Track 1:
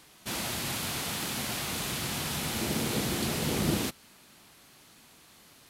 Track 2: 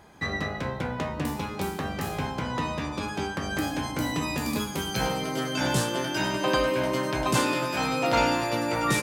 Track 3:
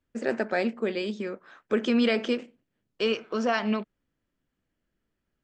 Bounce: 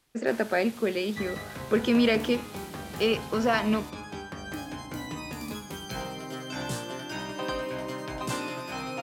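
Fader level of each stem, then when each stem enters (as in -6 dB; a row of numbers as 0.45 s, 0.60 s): -15.0 dB, -8.0 dB, +1.0 dB; 0.00 s, 0.95 s, 0.00 s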